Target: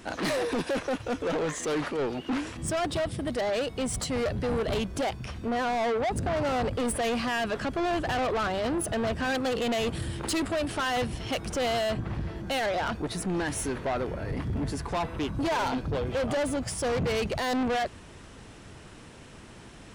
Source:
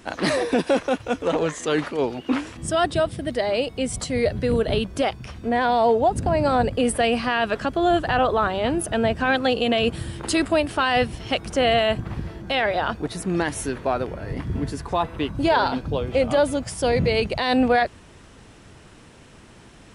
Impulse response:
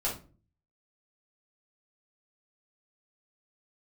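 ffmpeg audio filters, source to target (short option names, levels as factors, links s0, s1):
-filter_complex "[0:a]asettb=1/sr,asplit=3[s0][s1][s2];[s0]atrim=end=11.794[s3];[s1]atrim=start=11.79:end=12.36,asetpts=PTS-STARTPTS,afade=t=in:d=0.004:c=qsin,afade=t=out:st=0.566:d=0.004:c=qsin,highshelf=f=9000:g=-9[s4];[s2]atrim=start=12.356[s5];[s3][s4]acrossfade=d=0.004:c1=hsin:c2=qsin[s6];[s6][s5]acrossfade=d=0.004:c1=qsin:c2=hsin,asoftclip=type=tanh:threshold=0.0562"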